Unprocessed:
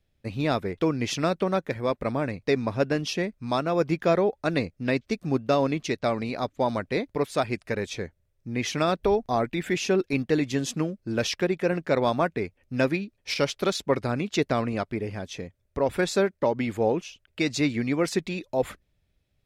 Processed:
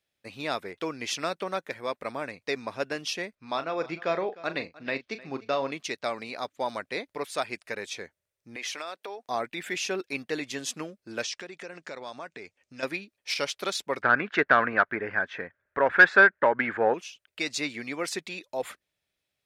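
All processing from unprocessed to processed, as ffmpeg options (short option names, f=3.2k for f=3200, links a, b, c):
-filter_complex "[0:a]asettb=1/sr,asplit=3[a][b][c];[a]atrim=end=3.354[d];[b]atrim=start=3.35:end=5.72,asetpts=PTS-STARTPTS,afade=t=in:d=0.004:c=qsin,afade=t=out:st=2.366:d=0.004:c=qsin,lowpass=4.2k,asplit=2[e][f];[f]adelay=37,volume=-11.5dB[g];[e][g]amix=inputs=2:normalize=0,atrim=end_sample=104517,aecho=1:1:304:0.106,atrim=end_sample=104517[h];[c]atrim=start=5.716[i];[d][h]acrossfade=d=0.004:c1=hsin:c2=qsin[j];[j][i]acrossfade=d=0.004:c1=qsin:c2=hsin,asettb=1/sr,asplit=3[k][l][m];[k]atrim=end=8.564[n];[l]atrim=start=8.56:end=9.29,asetpts=PTS-STARTPTS,afade=t=in:d=0.004:c=qsin,afade=t=out:st=0.726:d=0.004:c=qsin,highpass=400,acompressor=threshold=-29dB:ratio=4:attack=3.2:release=140:knee=1:detection=peak[o];[m]atrim=start=9.286[p];[n][o]acrossfade=d=0.004:c1=hsin:c2=qsin[q];[q][p]acrossfade=d=0.004:c1=qsin:c2=hsin,asettb=1/sr,asplit=3[r][s][t];[r]atrim=end=11.224[u];[s]atrim=start=11.22:end=12.83,asetpts=PTS-STARTPTS,afade=t=in:d=0.004:c=qsin,afade=t=out:st=1.606:d=0.004:c=qsin,lowpass=f=7k:t=q:w=1.9,acompressor=threshold=-31dB:ratio=4:attack=3.2:release=140:knee=1:detection=peak[v];[t]atrim=start=12.826[w];[u][v]acrossfade=d=0.004:c1=hsin:c2=qsin[x];[x][w]acrossfade=d=0.004:c1=qsin:c2=hsin,asettb=1/sr,asplit=3[y][z][aa];[y]atrim=end=14.024[ab];[z]atrim=start=14.02:end=16.94,asetpts=PTS-STARTPTS,afade=t=in:d=0.004:c=qsin,afade=t=out:st=2.916:d=0.004:c=qsin,lowpass=f=1.6k:t=q:w=6.2,acontrast=57[ac];[aa]atrim=start=16.936[ad];[ab][ac]acrossfade=d=0.004:c1=hsin:c2=qsin[ae];[ae][ad]acrossfade=d=0.004:c1=qsin:c2=hsin,highpass=f=1k:p=1,equalizer=f=8.9k:w=7.8:g=3.5"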